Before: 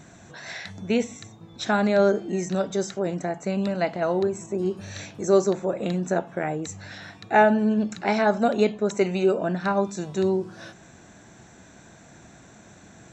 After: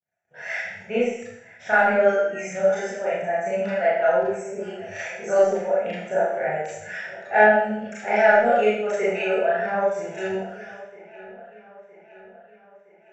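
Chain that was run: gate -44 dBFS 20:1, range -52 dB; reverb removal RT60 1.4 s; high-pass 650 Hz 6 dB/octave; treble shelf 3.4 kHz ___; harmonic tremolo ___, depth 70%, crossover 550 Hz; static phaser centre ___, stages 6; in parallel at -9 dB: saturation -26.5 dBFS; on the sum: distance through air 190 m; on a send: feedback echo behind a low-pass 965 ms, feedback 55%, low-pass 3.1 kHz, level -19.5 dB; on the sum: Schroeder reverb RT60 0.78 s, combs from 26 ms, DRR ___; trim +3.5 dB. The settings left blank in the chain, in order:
+3 dB, 3.1 Hz, 1.1 kHz, -9 dB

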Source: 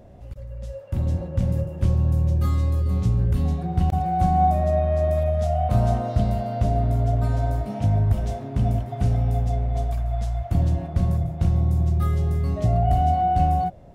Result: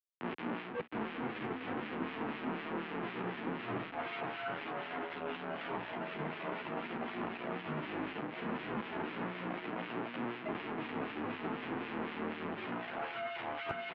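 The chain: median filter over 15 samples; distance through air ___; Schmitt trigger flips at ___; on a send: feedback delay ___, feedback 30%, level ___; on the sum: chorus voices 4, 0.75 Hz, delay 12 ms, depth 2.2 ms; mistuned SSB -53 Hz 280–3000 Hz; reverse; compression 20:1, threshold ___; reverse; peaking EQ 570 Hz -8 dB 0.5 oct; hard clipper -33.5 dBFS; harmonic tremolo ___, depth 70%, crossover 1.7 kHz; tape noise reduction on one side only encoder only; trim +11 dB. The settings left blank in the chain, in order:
140 m, -35.5 dBFS, 532 ms, -16 dB, -42 dBFS, 4 Hz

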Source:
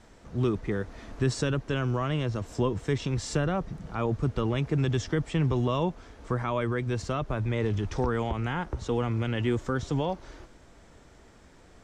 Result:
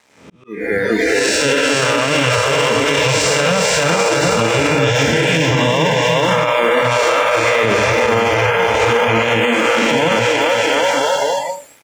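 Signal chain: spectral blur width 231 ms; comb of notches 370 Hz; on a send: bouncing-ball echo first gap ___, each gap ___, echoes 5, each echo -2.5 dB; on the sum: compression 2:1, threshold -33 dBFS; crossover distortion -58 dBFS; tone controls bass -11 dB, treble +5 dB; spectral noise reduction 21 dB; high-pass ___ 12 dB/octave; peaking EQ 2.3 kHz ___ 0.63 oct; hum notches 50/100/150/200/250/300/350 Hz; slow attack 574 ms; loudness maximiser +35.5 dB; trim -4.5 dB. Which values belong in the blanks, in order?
420 ms, 0.8×, 94 Hz, +9 dB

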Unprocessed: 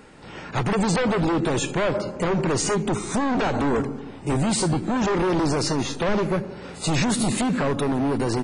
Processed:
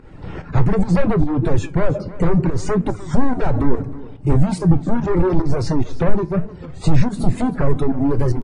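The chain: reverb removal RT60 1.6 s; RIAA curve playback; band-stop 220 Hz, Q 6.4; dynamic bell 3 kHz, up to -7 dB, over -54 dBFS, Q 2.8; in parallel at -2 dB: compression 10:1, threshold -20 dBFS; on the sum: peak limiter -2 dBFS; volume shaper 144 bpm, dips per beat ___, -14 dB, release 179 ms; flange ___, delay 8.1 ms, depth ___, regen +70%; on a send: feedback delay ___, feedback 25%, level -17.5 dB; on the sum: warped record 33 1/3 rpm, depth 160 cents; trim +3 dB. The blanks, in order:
1, 0.72 Hz, 6.1 ms, 317 ms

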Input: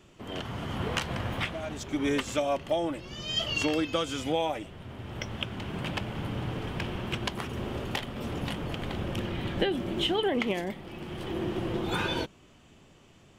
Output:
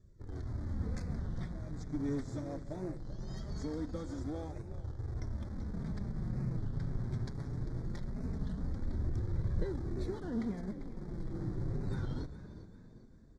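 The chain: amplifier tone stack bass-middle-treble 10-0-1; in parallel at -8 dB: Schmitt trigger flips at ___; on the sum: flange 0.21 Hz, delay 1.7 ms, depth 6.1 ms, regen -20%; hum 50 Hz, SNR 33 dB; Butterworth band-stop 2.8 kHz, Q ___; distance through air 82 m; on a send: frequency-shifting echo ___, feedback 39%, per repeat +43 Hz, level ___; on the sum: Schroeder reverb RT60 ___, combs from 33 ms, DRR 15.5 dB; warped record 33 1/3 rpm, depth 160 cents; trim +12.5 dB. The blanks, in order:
-51 dBFS, 1.2, 396 ms, -14 dB, 3.5 s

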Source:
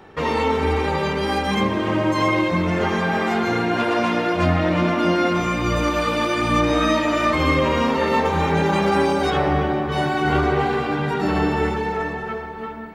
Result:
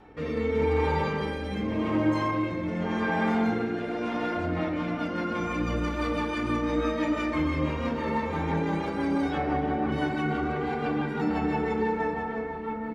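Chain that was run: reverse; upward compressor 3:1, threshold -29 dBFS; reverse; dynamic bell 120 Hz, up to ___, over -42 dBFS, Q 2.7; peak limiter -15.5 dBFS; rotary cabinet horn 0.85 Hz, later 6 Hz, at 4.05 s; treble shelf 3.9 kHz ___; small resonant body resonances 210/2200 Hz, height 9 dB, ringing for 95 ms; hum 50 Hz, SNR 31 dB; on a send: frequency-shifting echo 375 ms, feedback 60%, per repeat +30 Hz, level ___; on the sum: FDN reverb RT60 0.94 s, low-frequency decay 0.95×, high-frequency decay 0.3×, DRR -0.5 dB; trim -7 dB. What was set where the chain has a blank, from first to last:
-5 dB, -4.5 dB, -22 dB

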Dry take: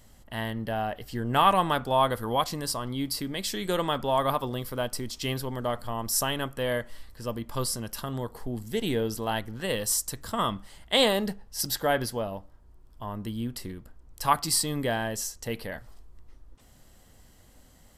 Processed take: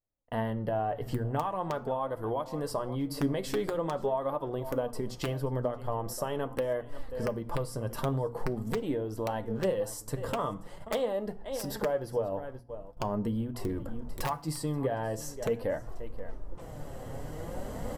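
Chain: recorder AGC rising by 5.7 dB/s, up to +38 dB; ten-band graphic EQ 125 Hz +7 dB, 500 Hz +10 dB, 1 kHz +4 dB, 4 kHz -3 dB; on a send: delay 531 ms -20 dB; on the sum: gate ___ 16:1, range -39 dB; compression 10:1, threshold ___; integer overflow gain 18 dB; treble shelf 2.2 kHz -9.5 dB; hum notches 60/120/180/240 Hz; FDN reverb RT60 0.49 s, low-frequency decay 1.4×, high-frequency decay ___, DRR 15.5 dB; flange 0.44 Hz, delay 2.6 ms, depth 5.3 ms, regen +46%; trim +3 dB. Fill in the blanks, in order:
-42 dBFS, -26 dBFS, 0.9×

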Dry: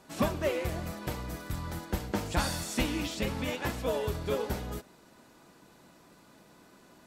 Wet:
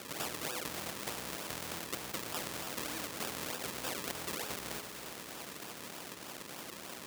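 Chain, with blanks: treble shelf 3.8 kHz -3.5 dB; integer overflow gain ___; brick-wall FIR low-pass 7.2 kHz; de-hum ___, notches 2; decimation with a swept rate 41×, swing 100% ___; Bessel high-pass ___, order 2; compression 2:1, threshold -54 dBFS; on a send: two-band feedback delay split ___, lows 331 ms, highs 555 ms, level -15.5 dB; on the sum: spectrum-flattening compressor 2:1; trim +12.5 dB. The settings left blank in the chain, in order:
23.5 dB, 423 Hz, 3.3 Hz, 270 Hz, 1.4 kHz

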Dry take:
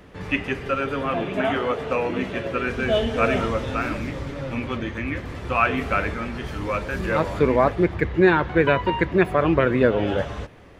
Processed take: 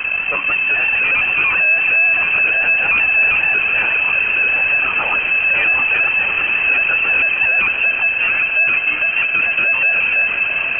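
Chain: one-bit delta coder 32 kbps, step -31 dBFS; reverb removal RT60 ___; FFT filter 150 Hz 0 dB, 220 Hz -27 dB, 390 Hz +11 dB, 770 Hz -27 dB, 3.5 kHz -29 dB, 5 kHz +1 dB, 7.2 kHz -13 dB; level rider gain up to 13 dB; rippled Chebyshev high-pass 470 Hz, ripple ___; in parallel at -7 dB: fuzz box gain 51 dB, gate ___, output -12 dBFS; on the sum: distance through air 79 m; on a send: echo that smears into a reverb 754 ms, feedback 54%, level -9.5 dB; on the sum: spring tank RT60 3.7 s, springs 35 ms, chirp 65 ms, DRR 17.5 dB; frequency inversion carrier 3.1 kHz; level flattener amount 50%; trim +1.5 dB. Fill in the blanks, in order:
0.97 s, 9 dB, -59 dBFS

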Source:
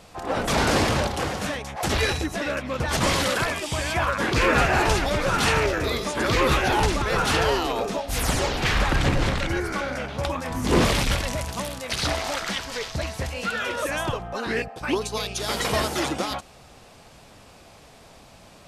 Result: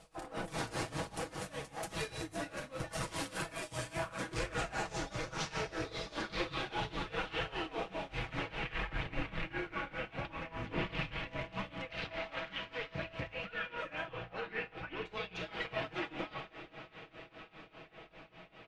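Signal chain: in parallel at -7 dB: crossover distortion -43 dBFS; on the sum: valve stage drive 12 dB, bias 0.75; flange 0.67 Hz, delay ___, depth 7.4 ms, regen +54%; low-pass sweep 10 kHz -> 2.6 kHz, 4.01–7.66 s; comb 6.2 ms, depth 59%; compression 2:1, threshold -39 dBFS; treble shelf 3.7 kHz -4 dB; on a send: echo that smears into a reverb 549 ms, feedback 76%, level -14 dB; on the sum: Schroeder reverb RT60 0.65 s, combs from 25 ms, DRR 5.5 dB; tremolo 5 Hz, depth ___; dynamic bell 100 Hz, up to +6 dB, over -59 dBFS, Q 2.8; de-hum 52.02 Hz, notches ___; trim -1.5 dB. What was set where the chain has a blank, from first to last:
1.3 ms, 89%, 2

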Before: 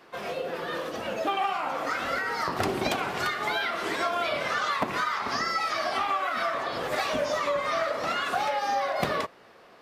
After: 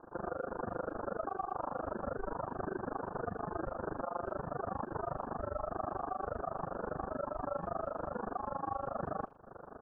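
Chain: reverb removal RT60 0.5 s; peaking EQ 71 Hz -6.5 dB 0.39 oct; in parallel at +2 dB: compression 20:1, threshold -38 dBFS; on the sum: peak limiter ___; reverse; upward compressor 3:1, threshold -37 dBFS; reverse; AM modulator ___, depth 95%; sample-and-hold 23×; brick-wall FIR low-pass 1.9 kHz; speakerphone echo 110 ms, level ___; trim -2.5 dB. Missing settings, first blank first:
-23 dBFS, 25 Hz, -29 dB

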